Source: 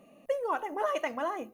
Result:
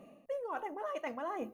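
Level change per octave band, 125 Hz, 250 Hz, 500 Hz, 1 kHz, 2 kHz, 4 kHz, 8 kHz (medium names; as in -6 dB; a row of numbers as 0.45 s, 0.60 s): no reading, -3.5 dB, -7.0 dB, -7.0 dB, -8.0 dB, -10.0 dB, under -10 dB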